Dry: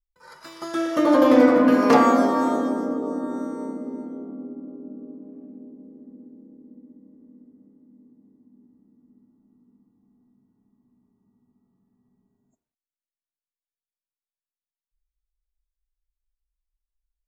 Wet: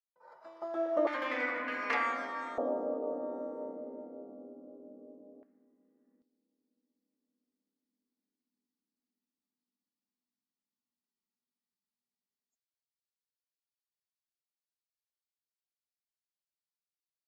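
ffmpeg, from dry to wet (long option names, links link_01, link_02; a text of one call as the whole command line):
ffmpeg -i in.wav -af "asetnsamples=nb_out_samples=441:pad=0,asendcmd='1.07 bandpass f 2100;2.58 bandpass f 610;5.43 bandpass f 1800;6.22 bandpass f 4600',bandpass=frequency=680:width_type=q:width=3.4:csg=0" out.wav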